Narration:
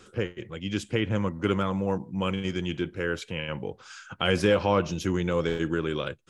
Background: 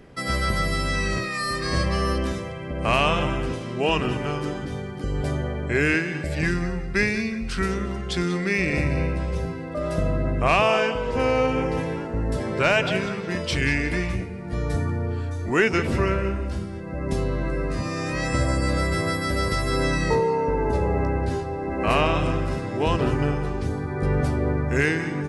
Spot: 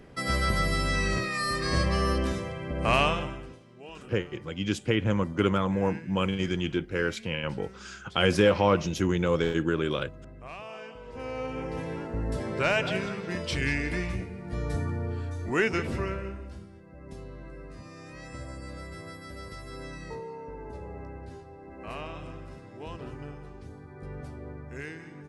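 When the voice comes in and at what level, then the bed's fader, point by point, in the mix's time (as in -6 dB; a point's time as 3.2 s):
3.95 s, +1.0 dB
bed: 3.02 s -2.5 dB
3.66 s -23 dB
10.65 s -23 dB
12.02 s -5.5 dB
15.69 s -5.5 dB
16.91 s -18 dB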